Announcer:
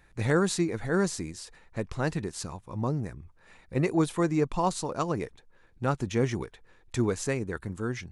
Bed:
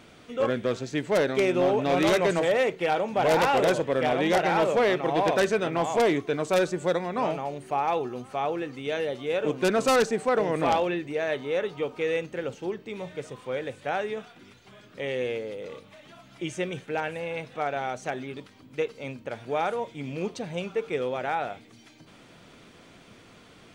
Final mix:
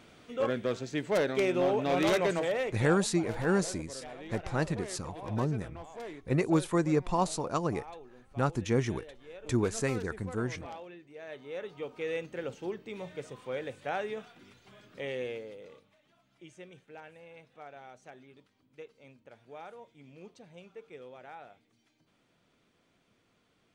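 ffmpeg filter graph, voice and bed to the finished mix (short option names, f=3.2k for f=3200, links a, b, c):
-filter_complex "[0:a]adelay=2550,volume=-1.5dB[a];[1:a]volume=11dB,afade=t=out:st=2.23:d=0.88:silence=0.158489,afade=t=in:st=11.1:d=1.39:silence=0.16788,afade=t=out:st=14.97:d=1.02:silence=0.199526[b];[a][b]amix=inputs=2:normalize=0"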